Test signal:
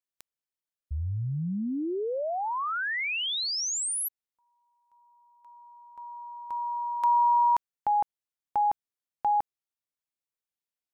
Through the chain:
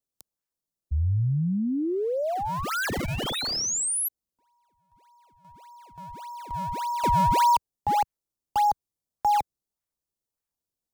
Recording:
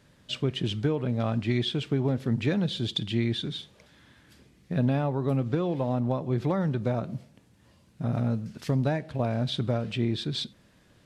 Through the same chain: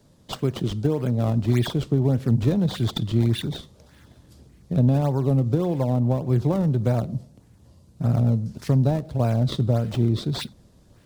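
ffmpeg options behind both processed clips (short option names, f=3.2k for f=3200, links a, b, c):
-filter_complex "[0:a]acrossover=split=110|1100|3600[a][b][c][d];[a]dynaudnorm=f=780:g=3:m=9dB[e];[c]acrusher=samples=32:mix=1:aa=0.000001:lfo=1:lforange=51.2:lforate=1.7[f];[e][b][f][d]amix=inputs=4:normalize=0,volume=3.5dB"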